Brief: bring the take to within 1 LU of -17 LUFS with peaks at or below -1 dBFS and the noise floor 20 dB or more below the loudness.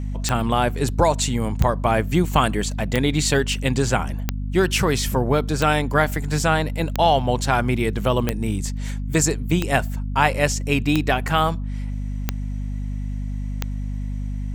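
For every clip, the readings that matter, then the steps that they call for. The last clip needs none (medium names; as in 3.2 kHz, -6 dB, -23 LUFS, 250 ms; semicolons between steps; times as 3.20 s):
clicks found 11; hum 50 Hz; highest harmonic 250 Hz; hum level -24 dBFS; loudness -22.0 LUFS; peak level -1.5 dBFS; loudness target -17.0 LUFS
-> de-click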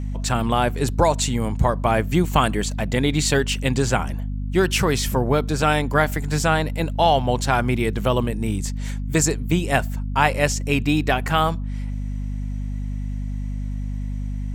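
clicks found 0; hum 50 Hz; highest harmonic 250 Hz; hum level -24 dBFS
-> hum notches 50/100/150/200/250 Hz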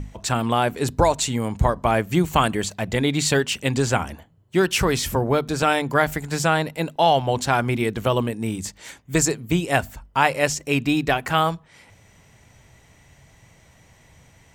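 hum not found; loudness -22.0 LUFS; peak level -1.5 dBFS; loudness target -17.0 LUFS
-> trim +5 dB; peak limiter -1 dBFS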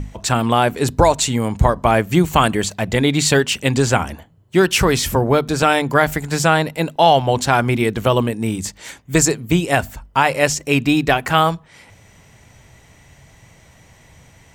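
loudness -17.0 LUFS; peak level -1.0 dBFS; noise floor -50 dBFS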